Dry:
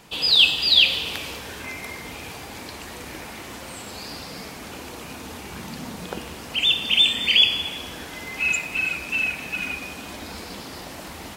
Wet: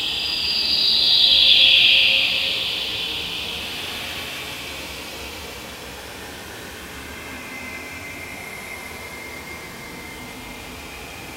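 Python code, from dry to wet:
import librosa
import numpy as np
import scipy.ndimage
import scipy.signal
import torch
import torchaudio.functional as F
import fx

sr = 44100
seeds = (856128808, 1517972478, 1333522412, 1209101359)

y = fx.paulstretch(x, sr, seeds[0], factor=6.7, window_s=0.25, from_s=0.55)
y = y * 10.0 ** (1.0 / 20.0)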